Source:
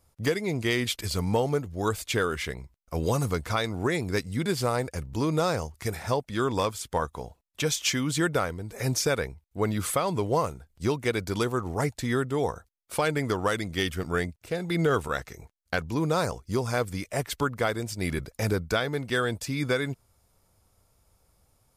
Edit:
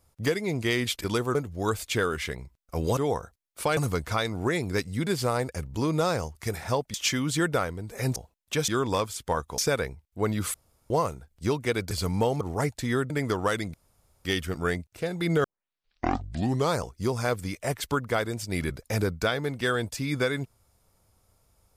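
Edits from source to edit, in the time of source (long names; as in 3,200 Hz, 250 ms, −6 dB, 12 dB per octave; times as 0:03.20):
0:01.04–0:01.54: swap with 0:11.30–0:11.61
0:06.33–0:07.23: swap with 0:07.75–0:08.97
0:09.93–0:10.29: fill with room tone
0:12.30–0:13.10: move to 0:03.16
0:13.74: splice in room tone 0.51 s
0:14.93: tape start 1.33 s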